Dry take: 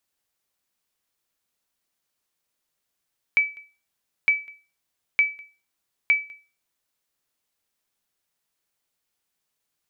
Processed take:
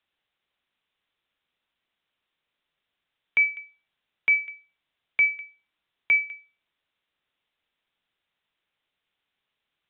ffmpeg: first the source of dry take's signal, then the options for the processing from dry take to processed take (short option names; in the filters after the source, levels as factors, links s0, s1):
-f lavfi -i "aevalsrc='0.282*(sin(2*PI*2300*mod(t,0.91))*exp(-6.91*mod(t,0.91)/0.32)+0.0473*sin(2*PI*2300*max(mod(t,0.91)-0.2,0))*exp(-6.91*max(mod(t,0.91)-0.2,0)/0.32))':d=3.64:s=44100"
-filter_complex "[0:a]acrossover=split=110|770|980[s0][s1][s2][s3];[s3]alimiter=limit=0.1:level=0:latency=1:release=21[s4];[s0][s1][s2][s4]amix=inputs=4:normalize=0,aresample=8000,aresample=44100,highshelf=f=2100:g=9"